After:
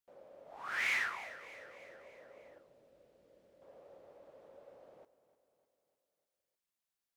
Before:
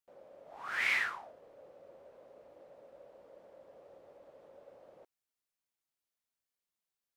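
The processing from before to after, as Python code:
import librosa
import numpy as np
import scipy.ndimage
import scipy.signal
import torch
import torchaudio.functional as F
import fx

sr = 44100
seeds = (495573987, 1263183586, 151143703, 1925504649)

p1 = fx.peak_eq(x, sr, hz=920.0, db=-14.5, octaves=2.0, at=(2.58, 3.62))
p2 = 10.0 ** (-30.5 / 20.0) * (np.abs((p1 / 10.0 ** (-30.5 / 20.0) + 3.0) % 4.0 - 2.0) - 1.0)
p3 = p1 + F.gain(torch.from_numpy(p2), -9.0).numpy()
p4 = fx.echo_feedback(p3, sr, ms=302, feedback_pct=56, wet_db=-15.5)
y = F.gain(torch.from_numpy(p4), -3.5).numpy()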